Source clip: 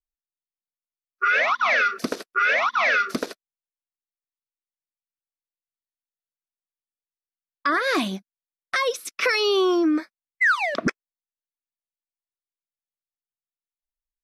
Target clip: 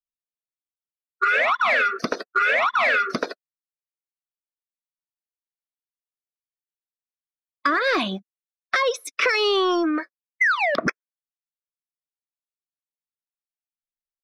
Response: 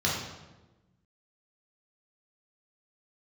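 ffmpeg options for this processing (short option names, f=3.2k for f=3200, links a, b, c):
-filter_complex "[0:a]afftdn=nr=24:nf=-38,acrossover=split=520|3500[a][b][c];[a]acompressor=threshold=-36dB:ratio=4[d];[b]acompressor=threshold=-27dB:ratio=4[e];[c]acompressor=threshold=-43dB:ratio=4[f];[d][e][f]amix=inputs=3:normalize=0,asplit=2[g][h];[h]asoftclip=type=tanh:threshold=-27.5dB,volume=-8.5dB[i];[g][i]amix=inputs=2:normalize=0,volume=5.5dB"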